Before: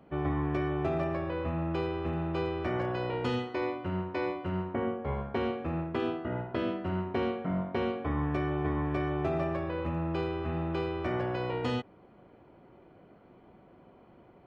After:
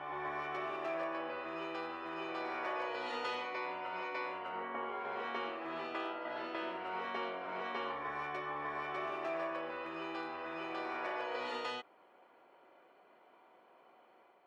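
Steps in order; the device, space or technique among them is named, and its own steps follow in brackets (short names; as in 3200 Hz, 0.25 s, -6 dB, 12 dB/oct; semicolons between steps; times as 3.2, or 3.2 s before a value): ghost voice (reverse; reverb RT60 1.5 s, pre-delay 95 ms, DRR -0.5 dB; reverse; HPF 710 Hz 12 dB/oct); gain -3 dB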